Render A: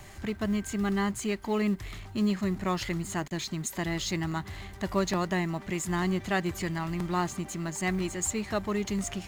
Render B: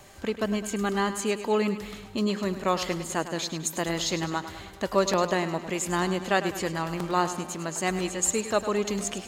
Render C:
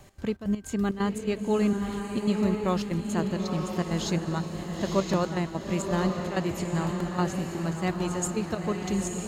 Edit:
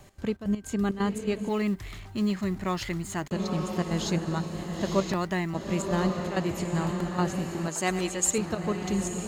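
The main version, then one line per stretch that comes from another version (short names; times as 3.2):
C
1.49–3.31 from A
5.12–5.54 from A
7.68–8.38 from B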